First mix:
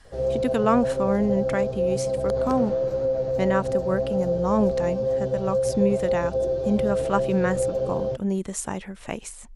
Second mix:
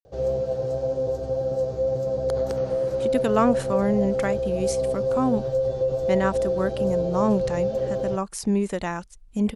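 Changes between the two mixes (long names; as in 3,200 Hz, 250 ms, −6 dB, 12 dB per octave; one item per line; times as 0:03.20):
speech: entry +2.70 s
master: add high-shelf EQ 5,600 Hz +4.5 dB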